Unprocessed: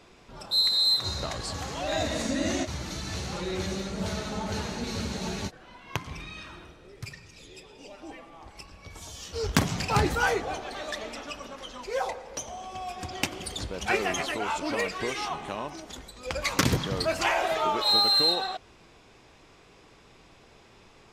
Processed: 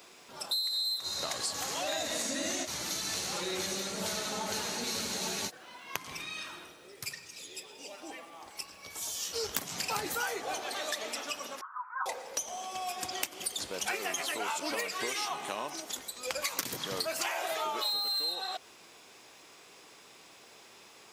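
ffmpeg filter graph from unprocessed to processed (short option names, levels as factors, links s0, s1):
-filter_complex "[0:a]asettb=1/sr,asplit=3[s0][s1][s2];[s0]atrim=end=11.614[s3];[s1]atrim=start=11.61:end=12.06,asetpts=PTS-STARTPTS,afade=t=in:d=0.004:c=qsin,afade=t=out:st=0.446:d=0.004:c=qsin,asuperpass=centerf=1200:order=8:qfactor=2.1,acontrast=53[s4];[s2]atrim=start=12.056[s5];[s3][s4]acrossfade=d=0.004:c1=hsin:c2=qsin[s6];[s6][s5]acrossfade=d=0.004:c1=qsin:c2=hsin,highpass=f=160:p=1,aemphasis=mode=production:type=bsi,acompressor=threshold=0.0316:ratio=12"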